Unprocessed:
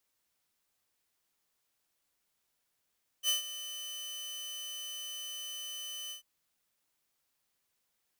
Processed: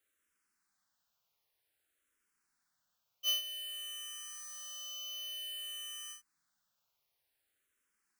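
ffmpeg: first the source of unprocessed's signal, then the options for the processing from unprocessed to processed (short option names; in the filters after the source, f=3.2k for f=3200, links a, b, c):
-f lavfi -i "aevalsrc='0.0708*(2*mod(3020*t,1)-1)':d=2.992:s=44100,afade=t=in:d=0.058,afade=t=out:st=0.058:d=0.129:silence=0.2,afade=t=out:st=2.88:d=0.112"
-filter_complex "[0:a]equalizer=f=1.5k:t=o:w=0.64:g=7,asplit=2[a][b];[b]afreqshift=-0.53[c];[a][c]amix=inputs=2:normalize=1"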